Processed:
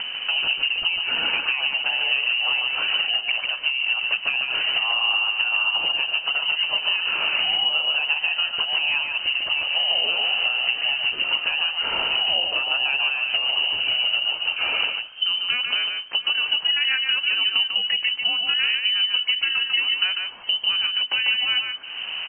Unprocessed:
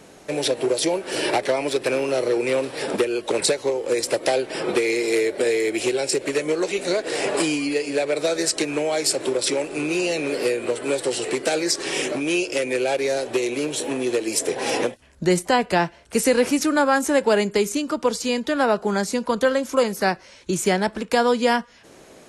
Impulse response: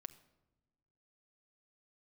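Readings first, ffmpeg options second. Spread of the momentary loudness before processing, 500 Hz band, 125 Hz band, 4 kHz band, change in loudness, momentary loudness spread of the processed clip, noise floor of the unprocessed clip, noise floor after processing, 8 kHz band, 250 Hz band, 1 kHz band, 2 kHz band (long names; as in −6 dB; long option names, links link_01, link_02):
5 LU, −21.5 dB, below −15 dB, +12.5 dB, +2.0 dB, 3 LU, −48 dBFS, −34 dBFS, below −40 dB, −27.0 dB, −7.5 dB, +6.0 dB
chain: -filter_complex "[0:a]equalizer=frequency=190:width_type=o:width=1.2:gain=11.5,acompressor=mode=upward:threshold=-23dB:ratio=2.5,alimiter=limit=-9.5dB:level=0:latency=1:release=337,acompressor=threshold=-23dB:ratio=6,asplit=2[link_01][link_02];[link_02]aecho=0:1:146|701:0.596|0.112[link_03];[link_01][link_03]amix=inputs=2:normalize=0,lowpass=frequency=2700:width_type=q:width=0.5098,lowpass=frequency=2700:width_type=q:width=0.6013,lowpass=frequency=2700:width_type=q:width=0.9,lowpass=frequency=2700:width_type=q:width=2.563,afreqshift=-3200,volume=2.5dB"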